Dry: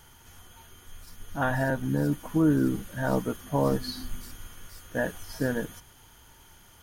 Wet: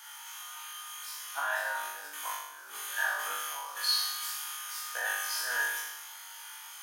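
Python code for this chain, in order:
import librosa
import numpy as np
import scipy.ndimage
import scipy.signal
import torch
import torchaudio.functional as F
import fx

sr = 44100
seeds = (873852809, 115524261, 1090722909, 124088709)

y = fx.over_compress(x, sr, threshold_db=-29.0, ratio=-0.5)
y = scipy.signal.sosfilt(scipy.signal.butter(4, 950.0, 'highpass', fs=sr, output='sos'), y)
y = fx.room_flutter(y, sr, wall_m=3.5, rt60_s=0.92)
y = y * librosa.db_to_amplitude(1.5)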